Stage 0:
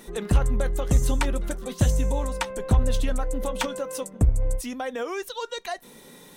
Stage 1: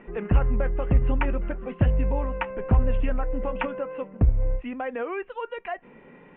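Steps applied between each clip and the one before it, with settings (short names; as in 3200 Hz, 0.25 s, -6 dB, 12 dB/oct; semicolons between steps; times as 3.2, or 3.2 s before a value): steep low-pass 2800 Hz 72 dB/oct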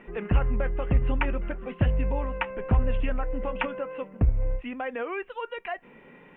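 high shelf 2300 Hz +9 dB; gain -2.5 dB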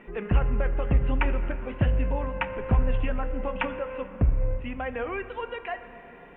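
plate-style reverb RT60 3.4 s, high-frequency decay 0.55×, DRR 10 dB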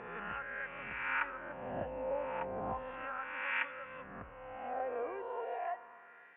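spectral swells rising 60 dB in 1.48 s; LFO band-pass sine 0.34 Hz 590–1900 Hz; gain -4.5 dB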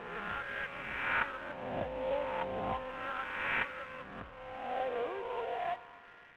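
CVSD 16 kbps; in parallel at -7.5 dB: crossover distortion -55.5 dBFS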